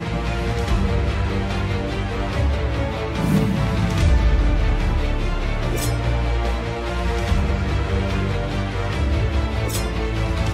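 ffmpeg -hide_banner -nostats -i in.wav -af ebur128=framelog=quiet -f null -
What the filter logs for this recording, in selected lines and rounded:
Integrated loudness:
  I:         -22.2 LUFS
  Threshold: -32.2 LUFS
Loudness range:
  LRA:         2.0 LU
  Threshold: -42.0 LUFS
  LRA low:   -22.9 LUFS
  LRA high:  -20.9 LUFS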